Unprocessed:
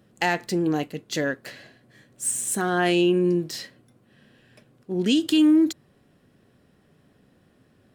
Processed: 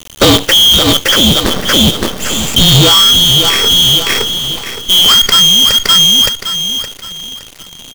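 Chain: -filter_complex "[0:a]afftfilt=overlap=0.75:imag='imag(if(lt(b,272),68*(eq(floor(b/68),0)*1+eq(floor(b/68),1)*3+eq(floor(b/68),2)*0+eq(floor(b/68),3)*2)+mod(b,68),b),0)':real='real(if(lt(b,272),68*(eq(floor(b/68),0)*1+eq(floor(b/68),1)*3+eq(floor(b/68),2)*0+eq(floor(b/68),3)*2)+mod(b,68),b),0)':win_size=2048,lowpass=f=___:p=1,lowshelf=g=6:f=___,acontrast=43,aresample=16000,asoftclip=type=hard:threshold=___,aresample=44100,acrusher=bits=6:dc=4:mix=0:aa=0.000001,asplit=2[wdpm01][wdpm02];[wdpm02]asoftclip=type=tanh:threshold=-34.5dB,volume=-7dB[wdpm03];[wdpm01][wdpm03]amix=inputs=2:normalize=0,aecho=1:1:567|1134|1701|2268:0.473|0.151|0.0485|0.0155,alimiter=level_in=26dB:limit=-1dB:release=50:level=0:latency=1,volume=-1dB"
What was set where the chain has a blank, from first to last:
1.5k, 160, -25dB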